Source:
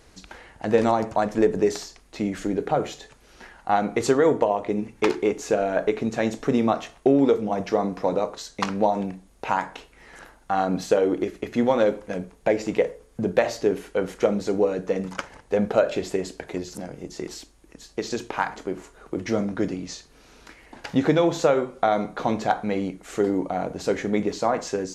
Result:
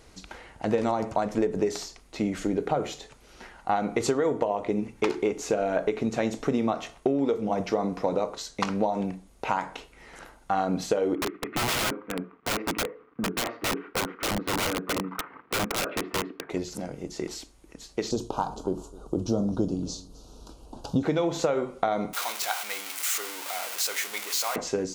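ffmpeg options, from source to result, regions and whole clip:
ffmpeg -i in.wav -filter_complex "[0:a]asettb=1/sr,asplit=3[link_01][link_02][link_03];[link_01]atrim=end=11.154[link_04];[link_02]atrim=start=11.15:end=16.5,asetpts=PTS-STARTPTS,afade=type=in:duration=0.004:curve=qsin,afade=type=out:start_time=5.346:duration=0.004:curve=qsin,acrusher=bits=8:mix=0:aa=0.5,highpass=220,equalizer=frequency=290:width_type=q:width=4:gain=5,equalizer=frequency=580:width_type=q:width=4:gain=-10,equalizer=frequency=820:width_type=q:width=4:gain=-5,equalizer=frequency=1200:width_type=q:width=4:gain=10,lowpass=frequency=2200:width=0.5412,lowpass=frequency=2200:width=1.3066,aeval=exprs='(mod(11.9*val(0)+1,2)-1)/11.9':channel_layout=same[link_05];[link_03]atrim=start=16.496[link_06];[link_04][link_05]acrossfade=duration=0.004:curve1=hsin:curve2=qsin[link_07];[link_07][link_06]acrossfade=duration=0.004:curve1=qsin:curve2=hsin,asettb=1/sr,asplit=3[link_08][link_09][link_10];[link_08]atrim=end=18.114[link_11];[link_09]atrim=start=18.11:end=21.03,asetpts=PTS-STARTPTS,afade=type=in:duration=0.004:curve=qsin,afade=type=out:start_time=2.916:duration=0.004:curve=qsin,asuperstop=centerf=2000:order=4:qfactor=0.8,lowshelf=frequency=140:gain=9.5,aecho=1:1:258:0.0891,atrim=end_sample=128772[link_12];[link_10]atrim=start=21.026[link_13];[link_11][link_12]acrossfade=duration=0.004:curve1=hsin:curve2=qsin[link_14];[link_14][link_13]acrossfade=duration=0.004:curve1=qsin:curve2=hsin,asettb=1/sr,asplit=3[link_15][link_16][link_17];[link_15]atrim=end=22.134[link_18];[link_16]atrim=start=22.13:end=24.56,asetpts=PTS-STARTPTS,afade=type=in:duration=0.004:curve=qsin,afade=type=out:start_time=2.426:duration=0.004:curve=qsin,aeval=exprs='val(0)+0.5*0.0531*sgn(val(0))':channel_layout=same,highpass=1400,highshelf=frequency=7400:gain=9.5[link_19];[link_17]atrim=start=24.556[link_20];[link_18][link_19]acrossfade=duration=0.004:curve1=hsin:curve2=qsin[link_21];[link_21][link_20]acrossfade=duration=0.004:curve1=qsin:curve2=hsin,acompressor=threshold=-21dB:ratio=6,bandreject=frequency=1700:width=13" out.wav

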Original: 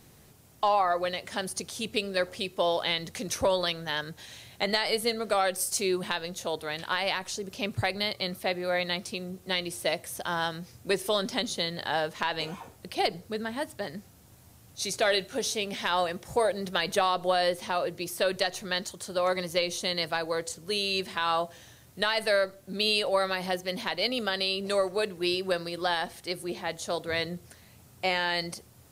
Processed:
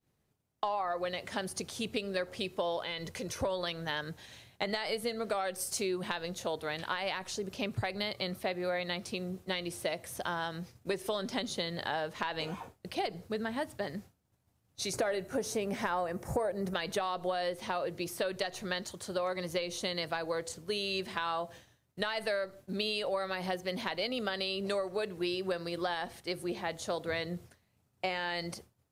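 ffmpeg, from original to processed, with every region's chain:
ffmpeg -i in.wav -filter_complex "[0:a]asettb=1/sr,asplit=3[link_01][link_02][link_03];[link_01]atrim=end=2.824[link_04];[link_02]atrim=start=2.82:end=3.42,asetpts=PTS-STARTPTS,afade=type=in:duration=0.004:curve=qsin,afade=type=out:start_time=0.596:duration=0.004:curve=qsin,bandreject=frequency=3800:width=18,aecho=1:1:2:0.35,atrim=end_sample=26460,acompressor=threshold=-35dB:ratio=2:attack=3.2:release=140:knee=1:detection=peak[link_05];[link_03]atrim=start=3.416[link_06];[link_04][link_05]acrossfade=duration=0.004:curve1=hsin:curve2=qsin[link_07];[link_07][link_06]acrossfade=duration=0.004:curve1=qsin:curve2=hsin,asettb=1/sr,asplit=3[link_08][link_09][link_10];[link_08]atrim=end=14.934[link_11];[link_09]atrim=start=14.93:end=16.74,asetpts=PTS-STARTPTS,afade=type=in:duration=0.004:curve=qsin,afade=type=out:start_time=1.806:duration=0.004:curve=qsin,equalizer=frequency=3500:width_type=o:width=1.1:gain=-14,acontrast=85[link_12];[link_10]atrim=start=16.736[link_13];[link_11][link_12]acrossfade=duration=0.004:curve1=hsin:curve2=qsin[link_14];[link_14][link_13]acrossfade=duration=0.004:curve1=qsin:curve2=hsin,agate=range=-33dB:threshold=-42dB:ratio=3:detection=peak,highshelf=frequency=3900:gain=-6.5,acompressor=threshold=-30dB:ratio=6" out.wav

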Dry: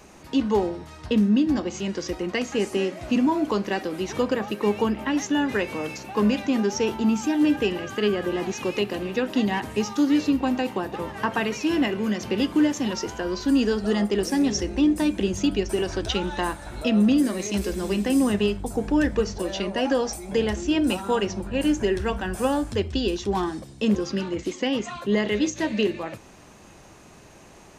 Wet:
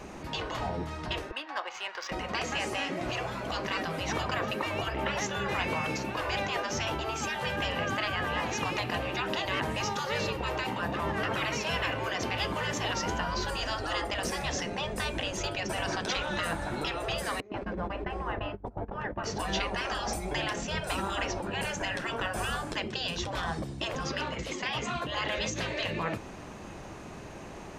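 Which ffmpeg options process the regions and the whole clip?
ffmpeg -i in.wav -filter_complex "[0:a]asettb=1/sr,asplit=3[link_01][link_02][link_03];[link_01]atrim=end=1.314[link_04];[link_02]atrim=start=1.31:end=2.12,asetpts=PTS-STARTPTS,afade=type=in:duration=0.004:curve=qsin,afade=type=out:start_time=0.806:duration=0.004:curve=qsin,highpass=frequency=830:width=0.5412,highpass=frequency=830:width=1.3066,adynamicsmooth=sensitivity=5.5:basefreq=2800[link_05];[link_03]atrim=start=2.116[link_06];[link_04][link_05]acrossfade=duration=0.004:curve1=hsin:curve2=qsin[link_07];[link_07][link_06]acrossfade=duration=0.004:curve1=qsin:curve2=hsin,asettb=1/sr,asplit=3[link_08][link_09][link_10];[link_08]atrim=end=17.404[link_11];[link_09]atrim=start=17.4:end=19.24,asetpts=PTS-STARTPTS,afade=type=in:duration=0.004:curve=qsin,afade=type=out:start_time=1.836:duration=0.004:curve=qsin,lowpass=1300,equalizer=frequency=160:width=3.1:gain=-13.5,agate=range=-23dB:threshold=-31dB:ratio=16:release=100:detection=peak[link_12];[link_10]atrim=start=19.236[link_13];[link_11][link_12]acrossfade=duration=0.004:curve1=hsin:curve2=qsin[link_14];[link_14][link_13]acrossfade=duration=0.004:curve1=qsin:curve2=hsin,afftfilt=real='re*lt(hypot(re,im),0.112)':imag='im*lt(hypot(re,im),0.112)':win_size=1024:overlap=0.75,highshelf=frequency=4400:gain=-11,volume=6dB" out.wav

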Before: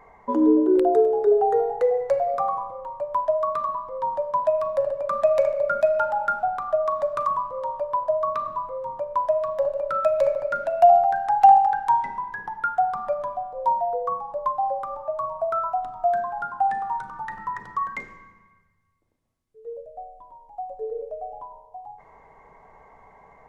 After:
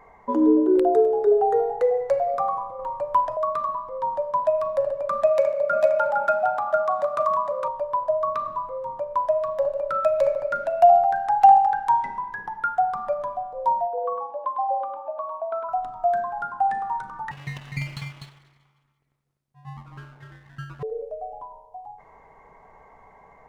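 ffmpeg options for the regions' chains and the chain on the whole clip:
ffmpeg -i in.wav -filter_complex "[0:a]asettb=1/sr,asplit=3[link_01][link_02][link_03];[link_01]atrim=end=2.794[link_04];[link_02]atrim=start=2.79:end=3.37,asetpts=PTS-STARTPTS,afade=type=in:duration=0.004:curve=qsin,afade=type=out:start_time=0.576:duration=0.004:curve=qsin,bandreject=frequency=630:width=5.2,acontrast=25[link_05];[link_03]atrim=start=3.366[link_06];[link_04][link_05]acrossfade=duration=0.004:curve1=hsin:curve2=qsin[link_07];[link_07][link_06]acrossfade=duration=0.004:curve1=qsin:curve2=hsin,asettb=1/sr,asplit=3[link_08][link_09][link_10];[link_08]atrim=end=5.274[link_11];[link_09]atrim=start=5.27:end=7.68,asetpts=PTS-STARTPTS,afade=type=in:duration=0.004:curve=qsin,afade=type=out:start_time=2.406:duration=0.004:curve=qsin,highpass=frequency=130:width=0.5412,highpass=frequency=130:width=1.3066,aecho=1:1:459:0.596,atrim=end_sample=106281[link_12];[link_10]atrim=start=7.676[link_13];[link_11][link_12]acrossfade=duration=0.004:curve1=hsin:curve2=qsin[link_14];[link_14][link_13]acrossfade=duration=0.004:curve1=qsin:curve2=hsin,asettb=1/sr,asplit=3[link_15][link_16][link_17];[link_15]atrim=end=13.874[link_18];[link_16]atrim=start=13.87:end=15.69,asetpts=PTS-STARTPTS,afade=type=in:duration=0.004:curve=qsin,afade=type=out:start_time=1.816:duration=0.004:curve=qsin,highpass=frequency=270:width=0.5412,highpass=frequency=270:width=1.3066,equalizer=frequency=400:width_type=q:width=4:gain=-4,equalizer=frequency=650:width_type=q:width=4:gain=-4,equalizer=frequency=1300:width_type=q:width=4:gain=-9,equalizer=frequency=2000:width_type=q:width=4:gain=-7,lowpass=frequency=3100:width=0.5412,lowpass=frequency=3100:width=1.3066,bandreject=frequency=1900:width=17,aecho=1:1:103:0.631,atrim=end_sample=80262[link_19];[link_17]atrim=start=15.686[link_20];[link_18][link_19]acrossfade=duration=0.004:curve1=hsin:curve2=qsin[link_21];[link_21][link_20]acrossfade=duration=0.004:curve1=qsin:curve2=hsin,asettb=1/sr,asplit=3[link_22][link_23][link_24];[link_22]atrim=end=17.314[link_25];[link_23]atrim=start=17.31:end=20.83,asetpts=PTS-STARTPTS,afade=type=in:duration=0.004:curve=qsin,afade=type=out:start_time=3.516:duration=0.004:curve=qsin,aecho=1:1:249:0.501,atrim=end_sample=155232,aeval=exprs='abs(val(0))':channel_layout=same,aeval=exprs='val(0)*sin(2*PI*140*n/s)':channel_layout=same[link_26];[link_24]atrim=start=20.826[link_27];[link_25][link_26]acrossfade=duration=0.004:curve1=hsin:curve2=qsin[link_28];[link_28][link_27]acrossfade=duration=0.004:curve1=qsin:curve2=hsin" out.wav

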